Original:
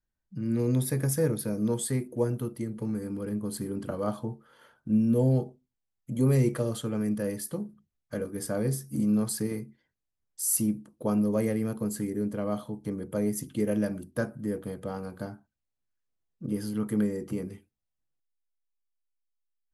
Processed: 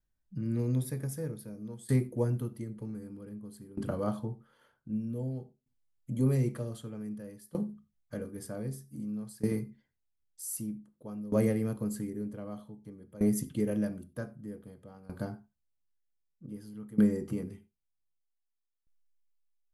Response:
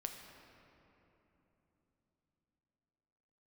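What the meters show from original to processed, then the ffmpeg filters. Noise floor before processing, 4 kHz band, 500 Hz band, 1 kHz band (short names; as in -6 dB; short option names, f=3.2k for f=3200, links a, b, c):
-84 dBFS, under -10 dB, -6.0 dB, -6.5 dB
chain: -filter_complex "[0:a]asplit=2[a][b];[1:a]atrim=start_sample=2205,atrim=end_sample=4410,lowshelf=f=230:g=10.5[c];[b][c]afir=irnorm=-1:irlink=0,volume=1dB[d];[a][d]amix=inputs=2:normalize=0,aeval=exprs='val(0)*pow(10,-19*if(lt(mod(0.53*n/s,1),2*abs(0.53)/1000),1-mod(0.53*n/s,1)/(2*abs(0.53)/1000),(mod(0.53*n/s,1)-2*abs(0.53)/1000)/(1-2*abs(0.53)/1000))/20)':c=same,volume=-5.5dB"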